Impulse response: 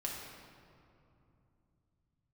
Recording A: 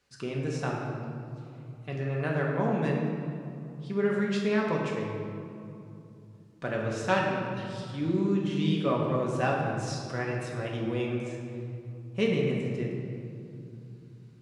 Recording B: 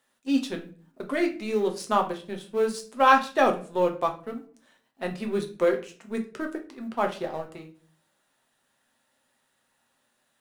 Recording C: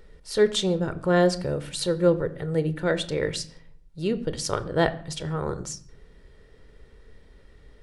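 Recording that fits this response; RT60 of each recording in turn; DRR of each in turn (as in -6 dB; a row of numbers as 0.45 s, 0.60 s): A; 2.8 s, 0.45 s, 0.55 s; -3.0 dB, 3.0 dB, 12.5 dB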